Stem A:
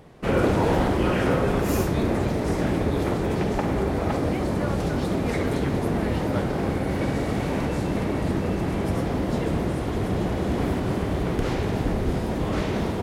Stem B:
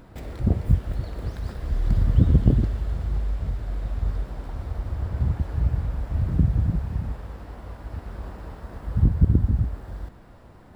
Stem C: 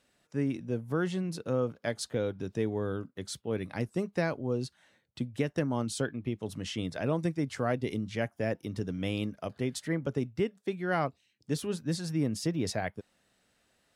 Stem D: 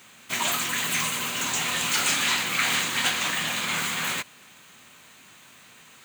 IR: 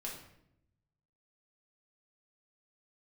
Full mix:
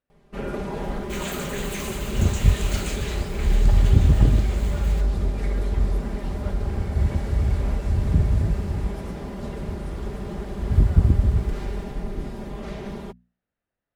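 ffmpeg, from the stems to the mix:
-filter_complex "[0:a]aecho=1:1:5:0.87,adelay=100,volume=-12dB[link_01];[1:a]equalizer=frequency=7200:width_type=o:width=1.6:gain=9.5,adynamicequalizer=threshold=0.00631:dfrequency=1500:dqfactor=0.7:tfrequency=1500:tqfactor=0.7:attack=5:release=100:ratio=0.375:range=2.5:mode=boostabove:tftype=highshelf,adelay=1750,volume=-3dB[link_02];[2:a]lowpass=2000,volume=-15dB[link_03];[3:a]adelay=800,volume=-9dB,afade=type=out:start_time=2.62:duration=0.66:silence=0.398107[link_04];[link_01][link_02][link_03][link_04]amix=inputs=4:normalize=0,lowshelf=frequency=75:gain=11,bandreject=frequency=60:width_type=h:width=6,bandreject=frequency=120:width_type=h:width=6,bandreject=frequency=180:width_type=h:width=6,bandreject=frequency=240:width_type=h:width=6"

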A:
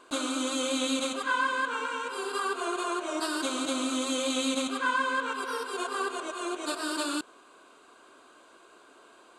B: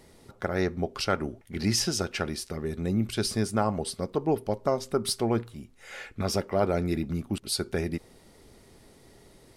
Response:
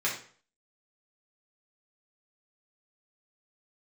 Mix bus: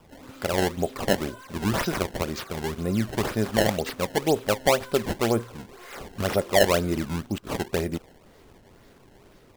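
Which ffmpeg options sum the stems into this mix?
-filter_complex "[0:a]acompressor=threshold=-31dB:ratio=6,asoftclip=type=hard:threshold=-33dB,volume=-10dB[link_01];[1:a]adynamicequalizer=threshold=0.00794:dfrequency=570:dqfactor=2.3:tfrequency=570:tqfactor=2.3:attack=5:release=100:ratio=0.375:range=3.5:mode=boostabove:tftype=bell,volume=1dB[link_02];[link_01][link_02]amix=inputs=2:normalize=0,acrusher=samples=21:mix=1:aa=0.000001:lfo=1:lforange=33.6:lforate=2"

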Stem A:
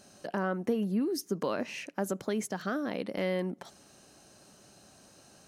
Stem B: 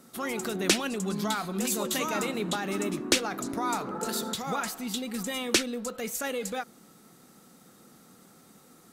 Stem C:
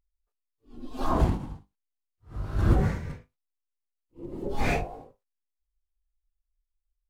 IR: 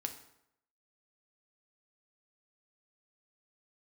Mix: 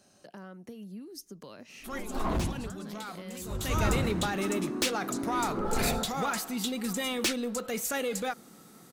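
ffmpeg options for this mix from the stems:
-filter_complex "[0:a]acrossover=split=150|3000[link_01][link_02][link_03];[link_02]acompressor=threshold=-48dB:ratio=2[link_04];[link_01][link_04][link_03]amix=inputs=3:normalize=0,volume=-6dB,asplit=2[link_05][link_06];[1:a]asoftclip=type=tanh:threshold=-24.5dB,adelay=1700,volume=2dB[link_07];[2:a]asoftclip=type=tanh:threshold=-22dB,adelay=1150,volume=-2dB[link_08];[link_06]apad=whole_len=468467[link_09];[link_07][link_09]sidechaincompress=threshold=-56dB:ratio=10:attack=42:release=278[link_10];[link_05][link_10][link_08]amix=inputs=3:normalize=0"

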